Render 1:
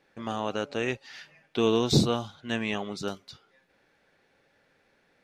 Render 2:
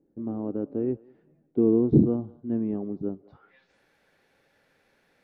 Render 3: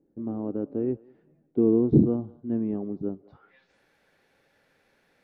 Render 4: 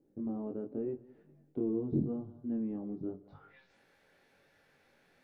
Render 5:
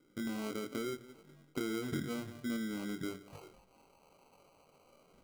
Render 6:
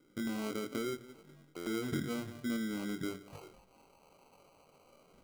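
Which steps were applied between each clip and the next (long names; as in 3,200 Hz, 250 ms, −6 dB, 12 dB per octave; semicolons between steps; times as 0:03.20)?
dynamic equaliser 1,100 Hz, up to +4 dB, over −39 dBFS, Q 0.72; low-pass filter sweep 310 Hz → 13,000 Hz, 0:03.16–0:03.83; feedback echo with a high-pass in the loop 198 ms, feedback 42%, high-pass 630 Hz, level −21 dB
no processing that can be heard
downward compressor 2 to 1, threshold −38 dBFS, peak gain reduction 14 dB; chorus effect 0.86 Hz, delay 20 ms, depth 3.6 ms; on a send at −15.5 dB: convolution reverb RT60 0.35 s, pre-delay 5 ms; on the sum: level +1.5 dB
downward compressor 4 to 1, threshold −38 dBFS, peak gain reduction 11 dB; auto-filter low-pass saw down 0.39 Hz 630–1,600 Hz; decimation without filtering 25×; level +2 dB
buffer that repeats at 0:01.56, samples 512, times 8; level +1.5 dB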